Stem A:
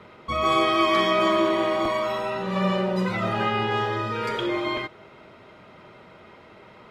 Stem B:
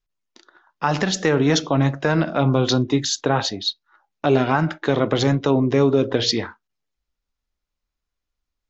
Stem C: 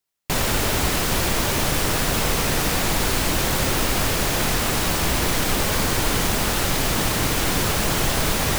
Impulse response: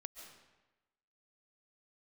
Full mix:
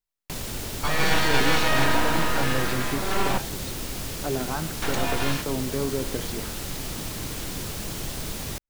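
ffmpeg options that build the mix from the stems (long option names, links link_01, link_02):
-filter_complex "[0:a]aeval=exprs='abs(val(0))':channel_layout=same,adelay=550,volume=1.5dB,asplit=3[link_01][link_02][link_03];[link_01]atrim=end=3.38,asetpts=PTS-STARTPTS,afade=type=out:start_time=3.376:duration=0.004:curve=hsin[link_04];[link_02]atrim=start=3.38:end=4.82,asetpts=PTS-STARTPTS,volume=0[link_05];[link_03]atrim=start=4.82,asetpts=PTS-STARTPTS,afade=type=in:duration=0.004:curve=hsin[link_06];[link_04][link_05][link_06]concat=n=3:v=0:a=1[link_07];[1:a]lowpass=2200,volume=-11.5dB[link_08];[2:a]acrossover=split=450|3000[link_09][link_10][link_11];[link_10]acompressor=threshold=-32dB:ratio=6[link_12];[link_09][link_12][link_11]amix=inputs=3:normalize=0,volume=-10dB[link_13];[link_07][link_08][link_13]amix=inputs=3:normalize=0"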